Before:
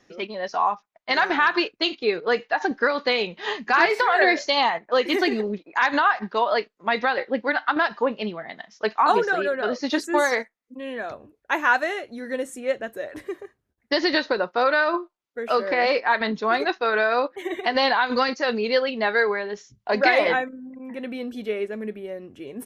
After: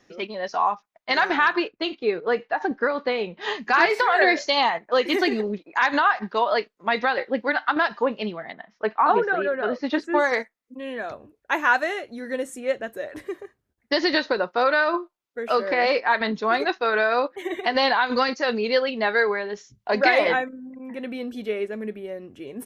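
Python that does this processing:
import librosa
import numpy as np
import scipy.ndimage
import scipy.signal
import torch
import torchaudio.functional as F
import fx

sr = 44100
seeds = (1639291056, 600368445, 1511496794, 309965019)

y = fx.lowpass(x, sr, hz=fx.line((1.52, 2000.0), (3.4, 1200.0)), slope=6, at=(1.52, 3.4), fade=0.02)
y = fx.lowpass(y, sr, hz=fx.line((8.52, 1800.0), (10.32, 3300.0)), slope=12, at=(8.52, 10.32), fade=0.02)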